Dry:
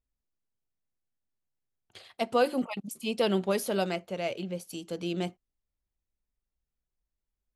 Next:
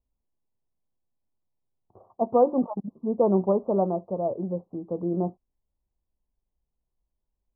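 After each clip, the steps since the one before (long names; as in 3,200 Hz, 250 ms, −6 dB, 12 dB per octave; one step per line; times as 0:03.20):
Butterworth low-pass 1,100 Hz 72 dB per octave
level +5.5 dB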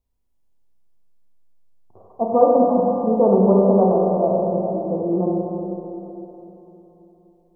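four-comb reverb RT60 3.6 s, combs from 32 ms, DRR −3.5 dB
level +3 dB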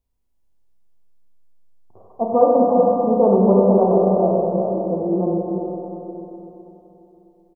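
single-tap delay 374 ms −7 dB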